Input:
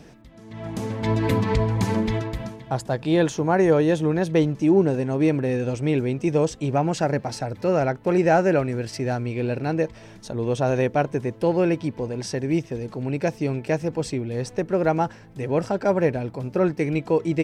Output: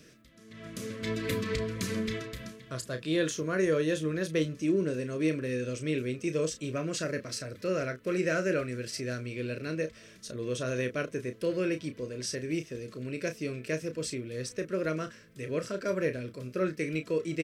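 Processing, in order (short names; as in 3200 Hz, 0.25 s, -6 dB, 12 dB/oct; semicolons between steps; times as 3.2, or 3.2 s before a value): Butterworth band-stop 820 Hz, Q 1.5; tilt +2 dB/oct; doubler 32 ms -9 dB; gain -6.5 dB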